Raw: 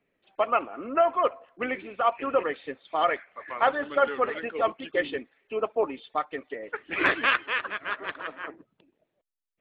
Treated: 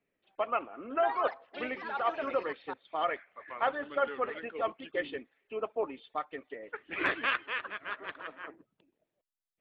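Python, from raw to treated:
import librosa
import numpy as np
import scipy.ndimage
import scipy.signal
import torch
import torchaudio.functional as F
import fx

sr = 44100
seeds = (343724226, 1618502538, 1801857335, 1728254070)

y = fx.echo_pitch(x, sr, ms=82, semitones=3, count=3, db_per_echo=-6.0, at=(0.82, 3.0))
y = y * 10.0 ** (-7.0 / 20.0)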